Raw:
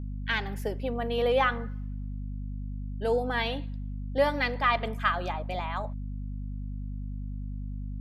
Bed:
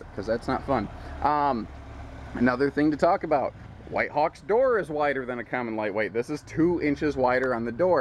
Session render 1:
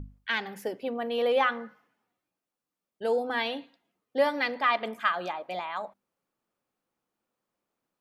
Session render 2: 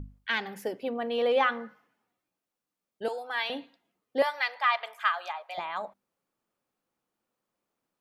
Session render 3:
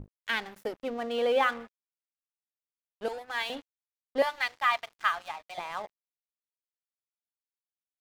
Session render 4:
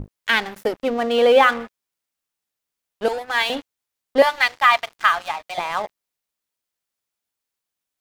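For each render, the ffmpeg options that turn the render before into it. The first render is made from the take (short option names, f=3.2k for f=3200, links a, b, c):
-af "bandreject=f=50:t=h:w=6,bandreject=f=100:t=h:w=6,bandreject=f=150:t=h:w=6,bandreject=f=200:t=h:w=6,bandreject=f=250:t=h:w=6"
-filter_complex "[0:a]asettb=1/sr,asplit=3[a][b][c];[a]atrim=end=0.894[d];[b]atrim=start=0.89:end=1.53,asetpts=PTS-STARTPTS,afade=t=in:d=0.004:c=qsin,afade=t=out:st=0.636:d=0.004:c=qsin,equalizer=f=12k:w=1.5:g=-9.5[e];[c]atrim=start=1.526[f];[d][e]acrossfade=d=0.004:c1=hsin:c2=qsin[g];[g][f]acrossfade=d=0.004:c1=qsin:c2=hsin,asettb=1/sr,asplit=3[h][i][j];[h]atrim=end=3.084[k];[i]atrim=start=3.08:end=3.5,asetpts=PTS-STARTPTS,afade=t=in:d=0.004:c=qsin,afade=t=out:st=0.416:d=0.004:c=qsin,highpass=880[l];[j]atrim=start=3.496[m];[k][l]acrossfade=d=0.004:c1=hsin:c2=qsin[n];[n][m]acrossfade=d=0.004:c1=qsin:c2=hsin,asettb=1/sr,asplit=3[o][p][q];[o]atrim=end=4.224[r];[p]atrim=start=4.22:end=5.58,asetpts=PTS-STARTPTS,afade=t=in:d=0.004:c=qsin,afade=t=out:st=1.356:d=0.004:c=qsin,highpass=f=730:w=0.5412,highpass=f=730:w=1.3066[s];[q]atrim=start=5.576[t];[r][s]acrossfade=d=0.004:c1=hsin:c2=qsin[u];[u][t]acrossfade=d=0.004:c1=qsin:c2=hsin"
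-af "aeval=exprs='sgn(val(0))*max(abs(val(0))-0.00668,0)':c=same"
-af "volume=12dB,alimiter=limit=-3dB:level=0:latency=1"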